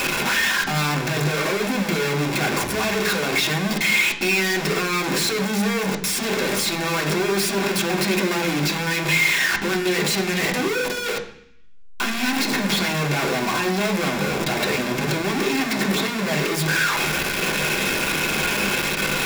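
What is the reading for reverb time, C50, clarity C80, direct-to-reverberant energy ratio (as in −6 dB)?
0.65 s, 11.0 dB, 14.0 dB, −0.5 dB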